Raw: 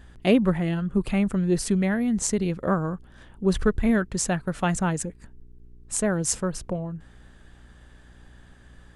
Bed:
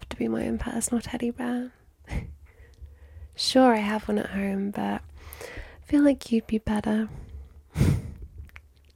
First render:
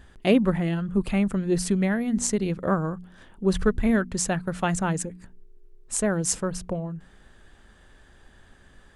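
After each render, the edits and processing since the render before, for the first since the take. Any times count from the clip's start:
hum removal 60 Hz, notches 5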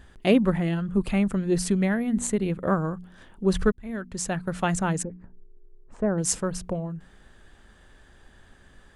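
0:01.95–0:02.67: parametric band 5,300 Hz −15 dB 0.46 octaves
0:03.72–0:04.53: fade in
0:05.03–0:06.18: low-pass filter 1,100 Hz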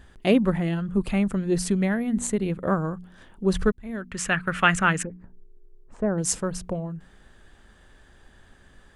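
0:04.11–0:05.07: flat-topped bell 1,900 Hz +12.5 dB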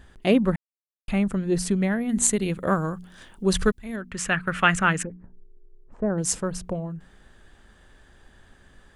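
0:00.56–0:01.08: silence
0:02.09–0:03.96: high-shelf EQ 2,200 Hz +10.5 dB
0:05.12–0:06.10: low-pass filter 1,200 Hz 6 dB per octave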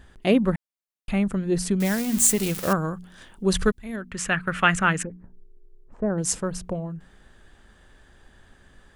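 0:01.80–0:02.73: spike at every zero crossing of −18.5 dBFS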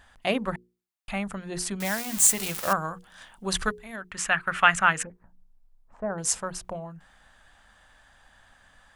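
low shelf with overshoot 550 Hz −8.5 dB, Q 1.5
mains-hum notches 60/120/180/240/300/360/420/480 Hz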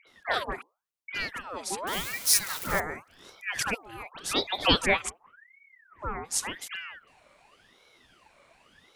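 all-pass dispersion highs, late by 71 ms, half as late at 1,000 Hz
ring modulator whose carrier an LFO sweeps 1,400 Hz, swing 60%, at 0.89 Hz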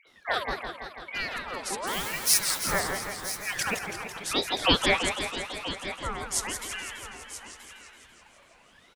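single-tap delay 978 ms −13 dB
feedback echo with a swinging delay time 166 ms, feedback 70%, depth 212 cents, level −7.5 dB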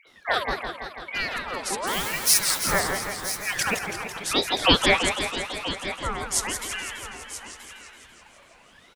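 level +4 dB
brickwall limiter −3 dBFS, peak gain reduction 2 dB

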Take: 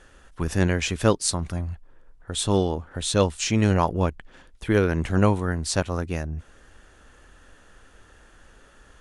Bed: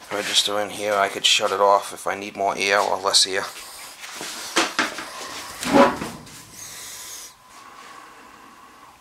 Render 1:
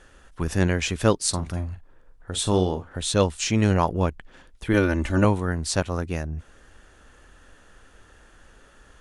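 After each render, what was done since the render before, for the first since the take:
0:01.29–0:02.93: double-tracking delay 43 ms −10.5 dB
0:04.73–0:05.25: comb filter 3.4 ms, depth 71%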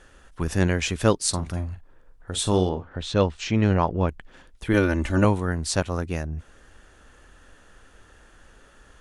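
0:02.69–0:04.09: high-frequency loss of the air 150 metres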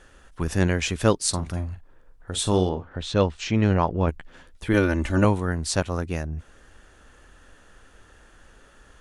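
0:04.06–0:04.69: double-tracking delay 12 ms −5.5 dB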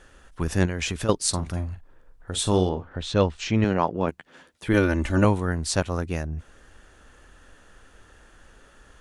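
0:00.65–0:01.09: downward compressor 12 to 1, threshold −22 dBFS
0:03.64–0:04.67: high-pass filter 170 Hz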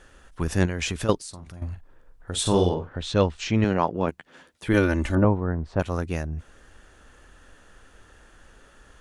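0:01.16–0:01.62: downward compressor 3 to 1, threshold −41 dBFS
0:02.41–0:02.91: double-tracking delay 45 ms −5 dB
0:05.15–0:05.80: low-pass filter 1,100 Hz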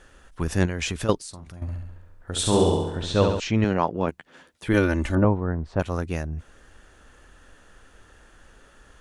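0:01.61–0:03.40: flutter between parallel walls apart 11.7 metres, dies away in 0.88 s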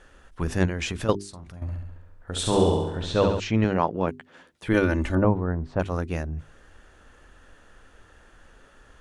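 high-shelf EQ 4,800 Hz −6 dB
mains-hum notches 50/100/150/200/250/300/350/400 Hz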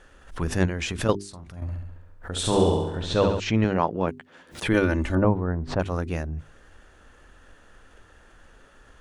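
background raised ahead of every attack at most 150 dB per second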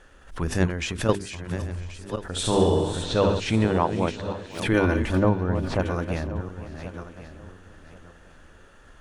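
feedback delay that plays each chunk backwards 541 ms, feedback 46%, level −9 dB
feedback echo with a high-pass in the loop 501 ms, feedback 41%, level −17 dB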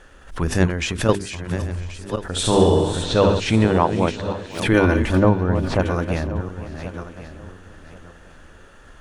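level +5 dB
brickwall limiter −1 dBFS, peak gain reduction 1 dB

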